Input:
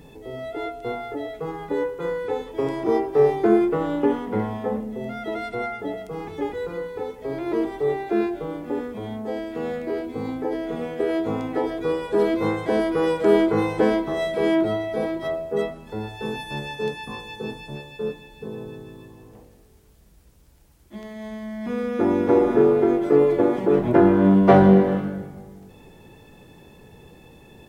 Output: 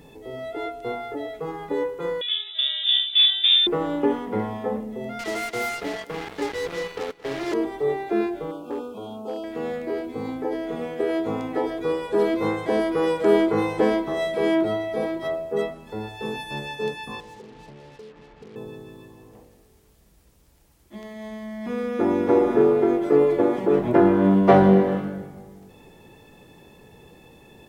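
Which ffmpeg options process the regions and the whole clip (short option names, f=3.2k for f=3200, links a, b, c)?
-filter_complex "[0:a]asettb=1/sr,asplit=3[a][b][c];[a]atrim=end=2.214[d];[b]atrim=start=2.21:end=3.67,asetpts=PTS-STARTPTS,afade=t=in:d=0.004:c=qsin,afade=t=out:st=1.456:d=0.004:c=qsin,volume=12dB,asoftclip=hard,volume=-12dB,lowpass=f=3.3k:t=q:w=0.5098,lowpass=f=3.3k:t=q:w=0.6013,lowpass=f=3.3k:t=q:w=0.9,lowpass=f=3.3k:t=q:w=2.563,afreqshift=-3900[e];[c]atrim=start=3.666[f];[d][e]acrossfade=d=0.004:c1=hsin:c2=qsin[g];[g][f]acrossfade=d=0.004:c1=qsin:c2=hsin,asettb=1/sr,asplit=3[h][i][j];[h]atrim=end=5.194[k];[i]atrim=start=5.19:end=7.54,asetpts=PTS-STARTPTS,afade=t=in:d=0.004:c=qsin,afade=t=out:st=2.346:d=0.004:c=qsin,equalizer=f=1.9k:t=o:w=0.42:g=7.5,acrusher=bits=4:mix=0:aa=0.5,aecho=1:1:225|450|675|900:0.112|0.0583|0.0303|0.0158,atrim=end_sample=103635[l];[j]atrim=start=7.536[m];[k][l]acrossfade=d=0.004:c1=hsin:c2=qsin[n];[n][m]acrossfade=d=0.004:c1=qsin:c2=hsin,asettb=1/sr,asplit=3[o][p][q];[o]atrim=end=8.514[r];[p]atrim=start=8.51:end=9.44,asetpts=PTS-STARTPTS,afade=t=in:d=0.004:c=qsin,afade=t=out:st=0.926:d=0.004:c=qsin,asuperstop=centerf=1900:order=20:qfactor=1.9,lowshelf=f=160:g=-11,asoftclip=type=hard:threshold=-22.5dB[s];[q]atrim=start=9.436[t];[r][s]acrossfade=d=0.004:c1=hsin:c2=qsin[u];[u][t]acrossfade=d=0.004:c1=qsin:c2=hsin,asettb=1/sr,asplit=3[v][w][x];[v]atrim=end=17.204[y];[w]atrim=start=17.2:end=18.56,asetpts=PTS-STARTPTS,afade=t=in:d=0.004:c=qsin,afade=t=out:st=1.356:d=0.004:c=qsin,lowpass=1.1k,acompressor=threshold=-38dB:ratio=16:attack=3.2:release=140:knee=1:detection=peak,acrusher=bits=7:mix=0:aa=0.5[z];[x]atrim=start=18.556[aa];[y][z]acrossfade=d=0.004:c1=hsin:c2=qsin[ab];[ab][aa]acrossfade=d=0.004:c1=qsin:c2=hsin,lowshelf=f=180:g=-5,bandreject=f=1.5k:w=25"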